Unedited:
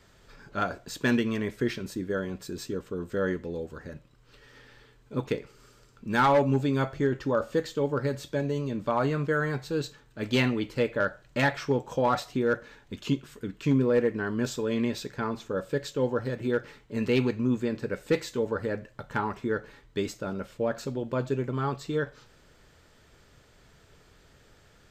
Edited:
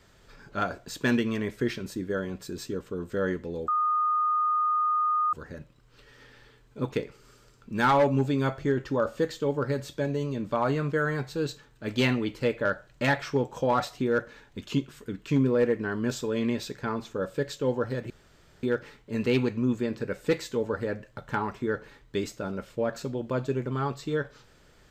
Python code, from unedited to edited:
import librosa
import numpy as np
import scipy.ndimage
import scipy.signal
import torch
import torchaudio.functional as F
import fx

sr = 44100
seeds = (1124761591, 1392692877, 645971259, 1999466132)

y = fx.edit(x, sr, fx.insert_tone(at_s=3.68, length_s=1.65, hz=1230.0, db=-22.0),
    fx.insert_room_tone(at_s=16.45, length_s=0.53), tone=tone)